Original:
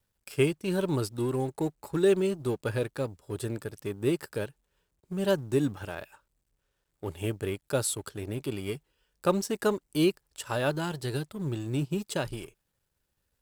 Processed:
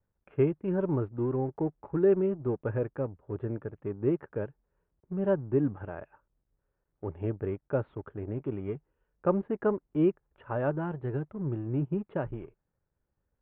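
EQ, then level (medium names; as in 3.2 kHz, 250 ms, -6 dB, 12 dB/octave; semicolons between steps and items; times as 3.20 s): Gaussian low-pass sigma 5.4 samples; 0.0 dB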